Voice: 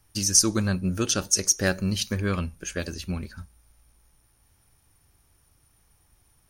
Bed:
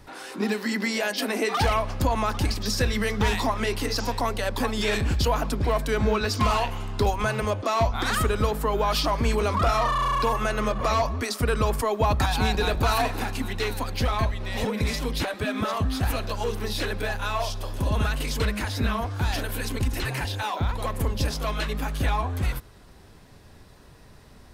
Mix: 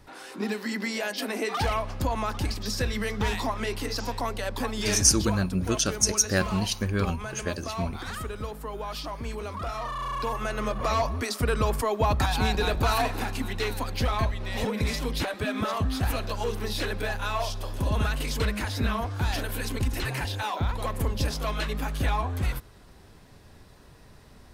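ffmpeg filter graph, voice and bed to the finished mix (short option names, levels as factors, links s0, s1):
-filter_complex "[0:a]adelay=4700,volume=0.891[s0];[1:a]volume=1.88,afade=t=out:st=4.98:d=0.39:silence=0.446684,afade=t=in:st=9.75:d=1.36:silence=0.334965[s1];[s0][s1]amix=inputs=2:normalize=0"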